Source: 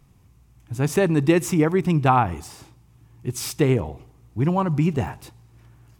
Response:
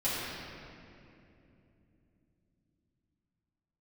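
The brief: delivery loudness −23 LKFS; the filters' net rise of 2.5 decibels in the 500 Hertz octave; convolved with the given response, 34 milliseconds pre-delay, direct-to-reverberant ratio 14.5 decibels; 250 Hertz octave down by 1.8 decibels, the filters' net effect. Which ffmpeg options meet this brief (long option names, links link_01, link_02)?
-filter_complex "[0:a]equalizer=frequency=250:width_type=o:gain=-5.5,equalizer=frequency=500:width_type=o:gain=5.5,asplit=2[link_01][link_02];[1:a]atrim=start_sample=2205,adelay=34[link_03];[link_02][link_03]afir=irnorm=-1:irlink=0,volume=-23.5dB[link_04];[link_01][link_04]amix=inputs=2:normalize=0,volume=-1.5dB"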